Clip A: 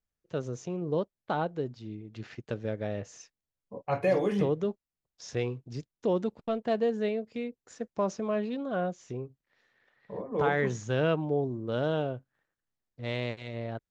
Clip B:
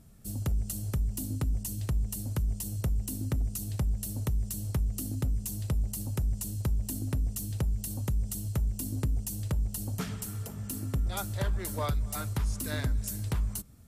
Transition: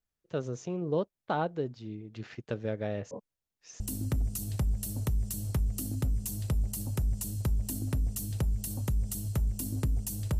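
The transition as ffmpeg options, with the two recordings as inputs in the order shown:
ffmpeg -i cue0.wav -i cue1.wav -filter_complex "[0:a]apad=whole_dur=10.39,atrim=end=10.39,asplit=2[link_01][link_02];[link_01]atrim=end=3.112[link_03];[link_02]atrim=start=3.108:end=3.802,asetpts=PTS-STARTPTS,areverse[link_04];[1:a]atrim=start=2.998:end=9.59[link_05];[link_03][link_04]acrossfade=duration=0.004:curve1=hsin:curve2=hsin[link_06];[link_06][link_05]acrossfade=duration=0.004:curve1=hsin:curve2=hsin" out.wav

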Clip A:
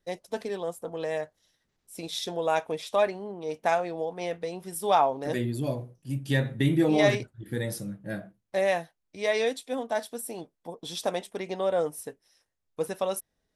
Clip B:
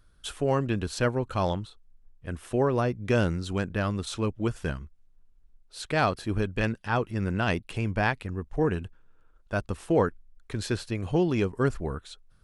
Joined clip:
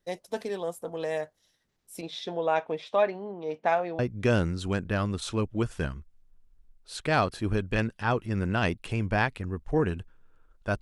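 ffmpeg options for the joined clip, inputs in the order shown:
ffmpeg -i cue0.wav -i cue1.wav -filter_complex "[0:a]asettb=1/sr,asplit=3[link_01][link_02][link_03];[link_01]atrim=end=2.014[link_04];[link_02]atrim=start=2.01:end=3.99,asetpts=PTS-STARTPTS,afade=type=in:duration=0.004:curve=qsin,afade=type=out:start_time=1.976:duration=0.004:curve=qsin,highpass=100,lowpass=3200[link_05];[link_03]atrim=start=3.986[link_06];[link_04][link_05]acrossfade=duration=0.004:curve1=hsin:curve2=qsin[link_07];[link_07][link_06]acrossfade=duration=0.004:curve1=qsin:curve2=hsin,apad=whole_dur=10.81,atrim=end=10.81,atrim=end=3.992[link_08];[1:a]atrim=start=2.838:end=9.66[link_09];[link_08][link_09]acrossfade=duration=0.004:curve1=hsin:curve2=hsin" out.wav

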